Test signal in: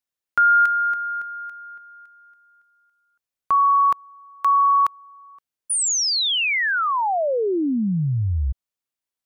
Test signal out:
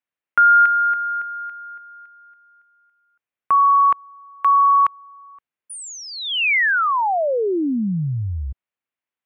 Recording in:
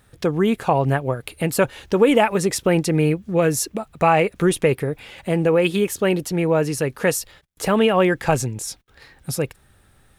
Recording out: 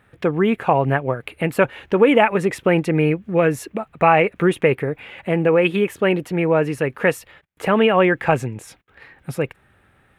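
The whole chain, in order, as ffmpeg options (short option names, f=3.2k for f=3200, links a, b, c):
-af "highpass=f=120:p=1,highshelf=f=3.5k:t=q:w=1.5:g=-12.5,volume=1.5dB"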